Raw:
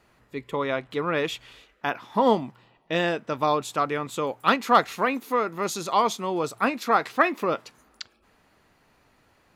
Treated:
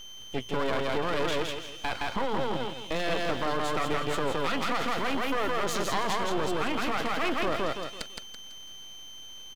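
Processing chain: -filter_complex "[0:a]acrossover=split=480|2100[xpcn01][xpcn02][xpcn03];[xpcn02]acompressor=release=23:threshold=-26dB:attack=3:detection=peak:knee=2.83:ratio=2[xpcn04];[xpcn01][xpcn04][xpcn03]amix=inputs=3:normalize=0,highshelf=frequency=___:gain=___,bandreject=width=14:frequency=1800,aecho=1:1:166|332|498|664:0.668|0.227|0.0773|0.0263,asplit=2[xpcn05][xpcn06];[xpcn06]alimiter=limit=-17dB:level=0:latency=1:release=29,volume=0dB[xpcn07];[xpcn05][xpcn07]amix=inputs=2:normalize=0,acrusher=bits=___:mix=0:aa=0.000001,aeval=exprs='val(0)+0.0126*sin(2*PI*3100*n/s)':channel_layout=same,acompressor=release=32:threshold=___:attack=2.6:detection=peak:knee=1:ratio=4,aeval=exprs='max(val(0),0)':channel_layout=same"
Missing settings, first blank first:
4900, -9, 10, -21dB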